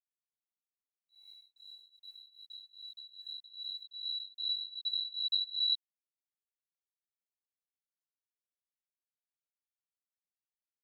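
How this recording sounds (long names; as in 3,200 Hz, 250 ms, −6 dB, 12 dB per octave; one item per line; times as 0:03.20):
a quantiser's noise floor 12 bits, dither none
tremolo triangle 2.5 Hz, depth 95%
a shimmering, thickened sound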